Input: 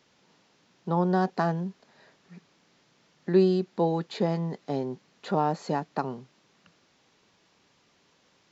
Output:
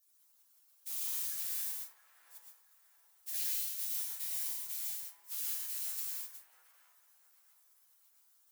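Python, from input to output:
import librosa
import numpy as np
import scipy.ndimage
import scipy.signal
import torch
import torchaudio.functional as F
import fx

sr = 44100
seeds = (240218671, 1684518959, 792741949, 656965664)

y = scipy.signal.sosfilt(scipy.signal.butter(2, 4800.0, 'lowpass', fs=sr, output='sos'), x)
y = fx.hum_notches(y, sr, base_hz=60, count=4)
y = fx.dmg_noise_colour(y, sr, seeds[0], colour='white', level_db=-42.0)
y = fx.quant_float(y, sr, bits=2)
y = fx.band_shelf(y, sr, hz=590.0, db=-8.5, octaves=2.8)
y = fx.comb_fb(y, sr, f0_hz=71.0, decay_s=0.5, harmonics='all', damping=0.0, mix_pct=80)
y = fx.spec_gate(y, sr, threshold_db=-20, keep='weak')
y = np.diff(y, prepend=0.0)
y = fx.echo_wet_bandpass(y, sr, ms=674, feedback_pct=33, hz=800.0, wet_db=-6)
y = fx.rev_plate(y, sr, seeds[1], rt60_s=0.52, hf_ratio=0.45, predelay_ms=100, drr_db=-2.0)
y = F.gain(torch.from_numpy(y), 6.5).numpy()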